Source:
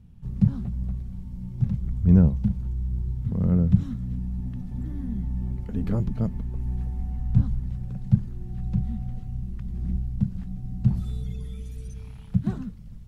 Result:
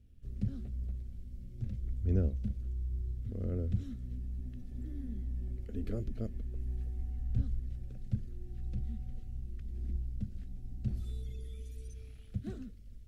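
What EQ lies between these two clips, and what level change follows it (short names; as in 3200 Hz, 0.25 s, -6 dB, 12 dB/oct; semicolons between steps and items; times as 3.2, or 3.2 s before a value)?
fixed phaser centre 390 Hz, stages 4; -6.0 dB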